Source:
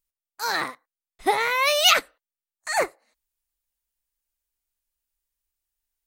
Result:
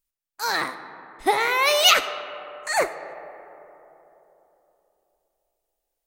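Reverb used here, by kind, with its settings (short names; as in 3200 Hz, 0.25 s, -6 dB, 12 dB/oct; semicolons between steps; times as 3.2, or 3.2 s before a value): digital reverb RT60 3.5 s, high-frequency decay 0.35×, pre-delay 0 ms, DRR 10.5 dB; gain +1 dB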